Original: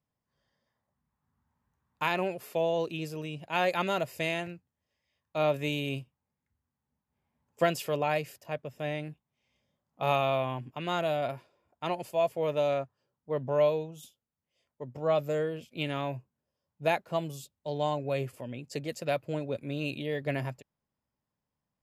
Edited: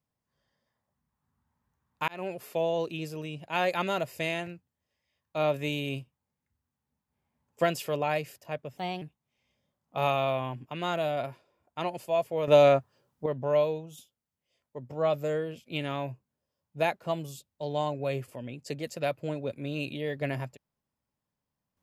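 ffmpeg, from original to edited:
-filter_complex "[0:a]asplit=6[a][b][c][d][e][f];[a]atrim=end=2.08,asetpts=PTS-STARTPTS,afade=t=out:st=2.076:d=0.004:c=hsin[g];[b]atrim=start=2.08:end=8.774,asetpts=PTS-STARTPTS,afade=t=in:d=0.27[h];[c]atrim=start=8.77:end=9.07,asetpts=PTS-STARTPTS,asetrate=53361,aresample=44100[i];[d]atrim=start=9.066:end=12.532[j];[e]atrim=start=12.528:end=13.312,asetpts=PTS-STARTPTS,volume=9.5dB[k];[f]atrim=start=13.308[l];[g][h]concat=n=2:v=0:a=1[m];[m][i]acrossfade=d=0.004:c1=hsin:c2=hsin[n];[n][j]acrossfade=d=0.004:c1=hsin:c2=hsin[o];[o][k]acrossfade=d=0.004:c1=hsin:c2=hsin[p];[p][l]acrossfade=d=0.004:c1=hsin:c2=hsin"

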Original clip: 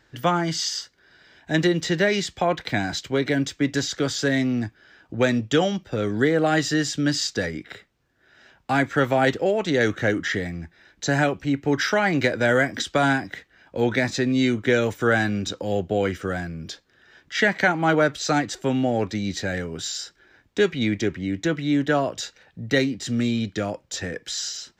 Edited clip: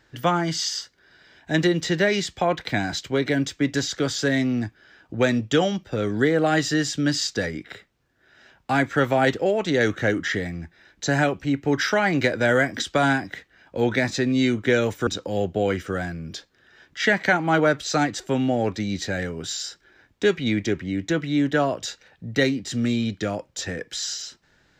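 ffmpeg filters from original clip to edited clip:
-filter_complex "[0:a]asplit=2[a][b];[a]atrim=end=15.072[c];[b]atrim=start=15.418[d];[c][d]acrossfade=d=0.004:c1=hsin:c2=hsin"

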